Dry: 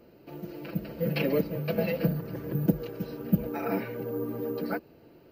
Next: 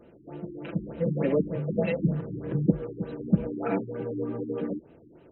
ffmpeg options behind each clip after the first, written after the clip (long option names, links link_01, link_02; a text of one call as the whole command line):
ffmpeg -i in.wav -af "afftfilt=real='re*lt(b*sr/1024,370*pow(4100/370,0.5+0.5*sin(2*PI*3.3*pts/sr)))':imag='im*lt(b*sr/1024,370*pow(4100/370,0.5+0.5*sin(2*PI*3.3*pts/sr)))':win_size=1024:overlap=0.75,volume=2dB" out.wav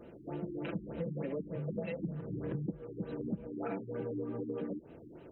ffmpeg -i in.wav -af "acompressor=threshold=-36dB:ratio=10,volume=1.5dB" out.wav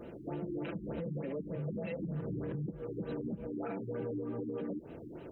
ffmpeg -i in.wav -af "alimiter=level_in=11.5dB:limit=-24dB:level=0:latency=1:release=93,volume=-11.5dB,volume=5dB" out.wav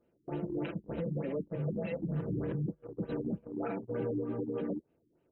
ffmpeg -i in.wav -af "agate=range=-30dB:threshold=-38dB:ratio=16:detection=peak,volume=4dB" out.wav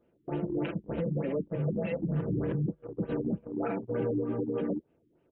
ffmpeg -i in.wav -af "aresample=8000,aresample=44100,volume=4dB" out.wav